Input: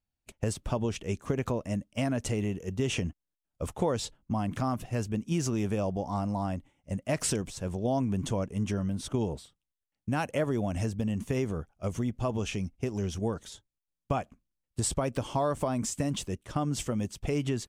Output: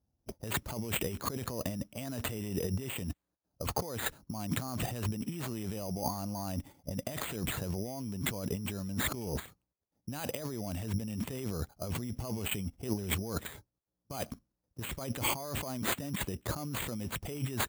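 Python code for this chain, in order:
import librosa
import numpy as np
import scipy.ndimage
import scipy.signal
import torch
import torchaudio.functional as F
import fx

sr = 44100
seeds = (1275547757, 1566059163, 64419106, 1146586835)

p1 = fx.env_lowpass(x, sr, base_hz=650.0, full_db=-24.5)
p2 = fx.dynamic_eq(p1, sr, hz=3900.0, q=2.7, threshold_db=-57.0, ratio=4.0, max_db=5)
p3 = fx.level_steps(p2, sr, step_db=18)
p4 = p2 + (p3 * librosa.db_to_amplitude(0.0))
p5 = np.repeat(p4[::8], 8)[:len(p4)]
p6 = fx.high_shelf(p5, sr, hz=7000.0, db=11.0)
p7 = fx.over_compress(p6, sr, threshold_db=-36.0, ratio=-1.0)
y = scipy.signal.sosfilt(scipy.signal.butter(2, 59.0, 'highpass', fs=sr, output='sos'), p7)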